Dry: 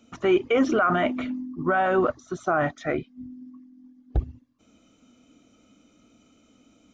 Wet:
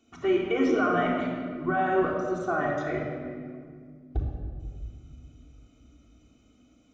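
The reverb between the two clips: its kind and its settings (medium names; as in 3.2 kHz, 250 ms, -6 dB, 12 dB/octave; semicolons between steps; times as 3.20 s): simulated room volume 3400 m³, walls mixed, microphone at 3.4 m; trim -8.5 dB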